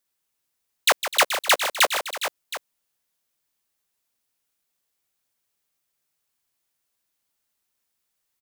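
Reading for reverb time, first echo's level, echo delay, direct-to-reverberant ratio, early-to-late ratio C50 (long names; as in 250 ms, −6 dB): no reverb audible, −10.5 dB, 156 ms, no reverb audible, no reverb audible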